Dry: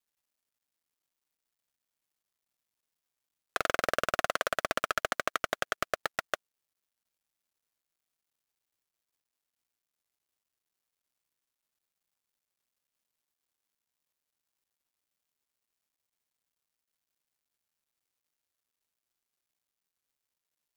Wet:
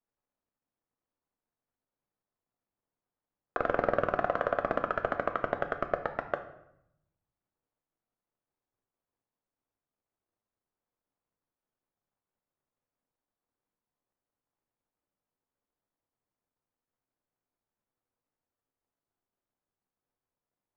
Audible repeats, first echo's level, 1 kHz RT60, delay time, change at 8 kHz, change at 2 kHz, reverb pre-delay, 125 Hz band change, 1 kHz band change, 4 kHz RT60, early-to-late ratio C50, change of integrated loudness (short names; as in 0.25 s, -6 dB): none, none, 0.75 s, none, under -25 dB, -3.5 dB, 3 ms, +6.5 dB, +1.5 dB, 0.60 s, 10.5 dB, +0.5 dB